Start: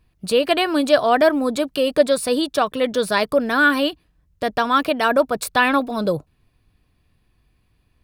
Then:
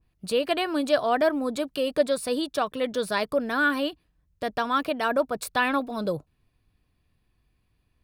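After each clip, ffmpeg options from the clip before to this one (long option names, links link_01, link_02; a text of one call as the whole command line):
ffmpeg -i in.wav -af "adynamicequalizer=threshold=0.0501:dfrequency=1800:dqfactor=0.7:tfrequency=1800:tqfactor=0.7:attack=5:release=100:ratio=0.375:range=1.5:mode=cutabove:tftype=highshelf,volume=-7dB" out.wav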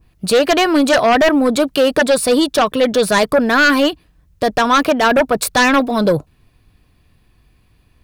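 ffmpeg -i in.wav -af "aeval=exprs='0.355*sin(PI/2*3.16*val(0)/0.355)':channel_layout=same,volume=1.5dB" out.wav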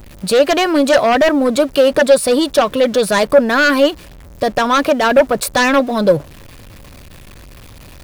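ffmpeg -i in.wav -af "aeval=exprs='val(0)+0.5*0.0282*sgn(val(0))':channel_layout=same,equalizer=frequency=560:width=7.8:gain=7,volume=-1.5dB" out.wav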